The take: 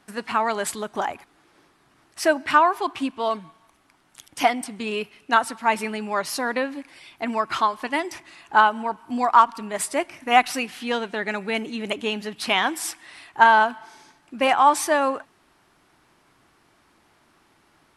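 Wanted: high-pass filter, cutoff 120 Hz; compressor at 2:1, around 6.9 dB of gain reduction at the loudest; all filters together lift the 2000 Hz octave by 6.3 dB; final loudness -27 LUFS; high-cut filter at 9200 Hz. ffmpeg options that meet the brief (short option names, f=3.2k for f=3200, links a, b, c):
-af "highpass=120,lowpass=9.2k,equalizer=f=2k:t=o:g=8.5,acompressor=threshold=-19dB:ratio=2,volume=-3.5dB"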